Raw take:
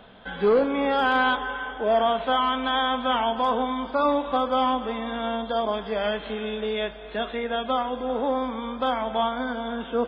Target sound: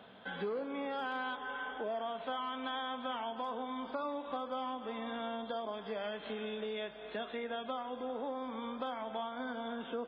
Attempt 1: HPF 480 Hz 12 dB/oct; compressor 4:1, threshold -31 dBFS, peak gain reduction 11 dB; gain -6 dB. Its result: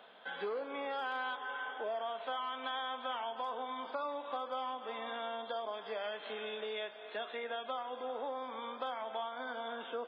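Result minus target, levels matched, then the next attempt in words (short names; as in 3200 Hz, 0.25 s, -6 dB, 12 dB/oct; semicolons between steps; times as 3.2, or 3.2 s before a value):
125 Hz band -12.0 dB
HPF 130 Hz 12 dB/oct; compressor 4:1, threshold -31 dBFS, peak gain reduction 12.5 dB; gain -6 dB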